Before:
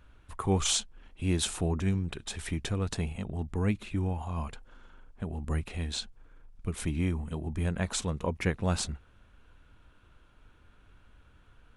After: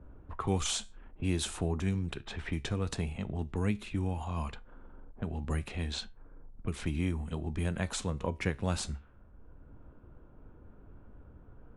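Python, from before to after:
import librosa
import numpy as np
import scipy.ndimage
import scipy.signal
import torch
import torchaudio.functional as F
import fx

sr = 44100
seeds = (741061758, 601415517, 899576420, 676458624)

y = fx.comb_fb(x, sr, f0_hz=69.0, decay_s=0.3, harmonics='all', damping=0.0, mix_pct=40)
y = fx.env_lowpass(y, sr, base_hz=510.0, full_db=-31.0)
y = fx.band_squash(y, sr, depth_pct=40)
y = y * 10.0 ** (1.0 / 20.0)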